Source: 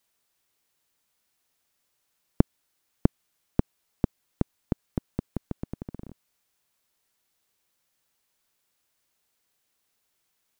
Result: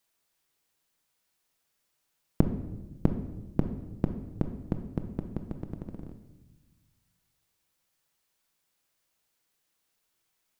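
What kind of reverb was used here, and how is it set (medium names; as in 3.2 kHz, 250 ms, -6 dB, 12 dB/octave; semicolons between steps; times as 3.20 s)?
simulated room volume 620 m³, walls mixed, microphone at 0.65 m; trim -2.5 dB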